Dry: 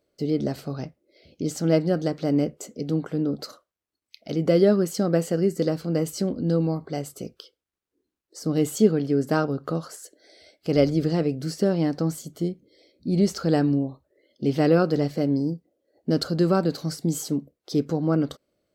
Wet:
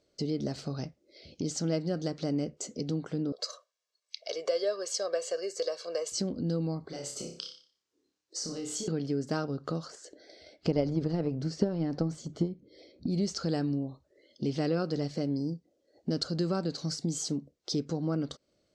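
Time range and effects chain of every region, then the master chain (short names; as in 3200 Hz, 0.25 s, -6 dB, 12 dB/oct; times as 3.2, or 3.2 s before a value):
3.32–6.12 HPF 470 Hz 24 dB/oct + comb 1.8 ms, depth 73%
6.88–8.88 HPF 300 Hz 6 dB/oct + compressor 5:1, threshold -35 dBFS + flutter echo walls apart 5.1 m, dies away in 0.43 s
9.9–13.07 transient shaper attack +10 dB, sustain +6 dB + LPF 1500 Hz 6 dB/oct
whole clip: LPF 6600 Hz 24 dB/oct; tone controls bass +2 dB, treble +11 dB; compressor 2:1, threshold -35 dBFS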